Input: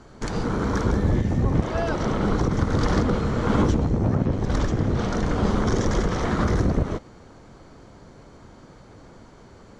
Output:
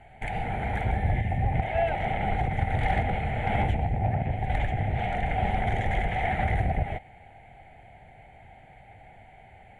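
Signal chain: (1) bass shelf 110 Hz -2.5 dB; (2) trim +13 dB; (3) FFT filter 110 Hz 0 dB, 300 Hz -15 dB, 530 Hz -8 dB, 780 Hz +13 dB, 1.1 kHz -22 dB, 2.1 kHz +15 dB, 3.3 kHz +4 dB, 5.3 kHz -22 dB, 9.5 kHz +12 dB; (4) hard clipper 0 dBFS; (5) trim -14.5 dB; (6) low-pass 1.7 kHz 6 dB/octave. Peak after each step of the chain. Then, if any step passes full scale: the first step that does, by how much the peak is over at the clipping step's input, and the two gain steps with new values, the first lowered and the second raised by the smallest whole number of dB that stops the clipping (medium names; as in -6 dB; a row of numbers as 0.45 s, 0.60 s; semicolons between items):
-8.5 dBFS, +4.5 dBFS, +3.0 dBFS, 0.0 dBFS, -14.5 dBFS, -14.5 dBFS; step 2, 3.0 dB; step 2 +10 dB, step 5 -11.5 dB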